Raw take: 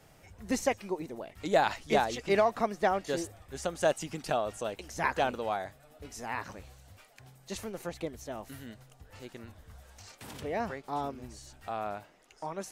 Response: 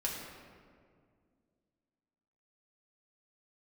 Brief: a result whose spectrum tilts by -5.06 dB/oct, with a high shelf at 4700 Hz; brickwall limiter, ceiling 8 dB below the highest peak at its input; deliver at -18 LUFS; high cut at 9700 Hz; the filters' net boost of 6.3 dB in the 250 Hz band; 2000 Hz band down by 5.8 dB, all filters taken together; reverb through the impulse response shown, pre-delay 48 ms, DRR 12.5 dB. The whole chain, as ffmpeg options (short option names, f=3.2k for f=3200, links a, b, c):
-filter_complex "[0:a]lowpass=9.7k,equalizer=f=250:t=o:g=8,equalizer=f=2k:t=o:g=-8.5,highshelf=f=4.7k:g=3.5,alimiter=limit=-20dB:level=0:latency=1,asplit=2[a][b];[1:a]atrim=start_sample=2205,adelay=48[c];[b][c]afir=irnorm=-1:irlink=0,volume=-16dB[d];[a][d]amix=inputs=2:normalize=0,volume=16.5dB"